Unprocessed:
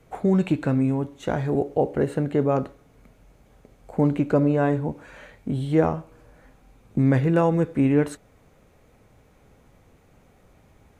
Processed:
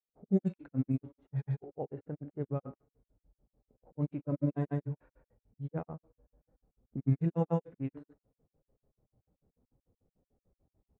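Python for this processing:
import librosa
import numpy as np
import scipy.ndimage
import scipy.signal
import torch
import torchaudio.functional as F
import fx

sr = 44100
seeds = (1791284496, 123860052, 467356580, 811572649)

y = fx.granulator(x, sr, seeds[0], grain_ms=100.0, per_s=6.8, spray_ms=100.0, spread_st=0)
y = fx.hpss(y, sr, part='percussive', gain_db=-16)
y = fx.env_lowpass(y, sr, base_hz=550.0, full_db=-25.0)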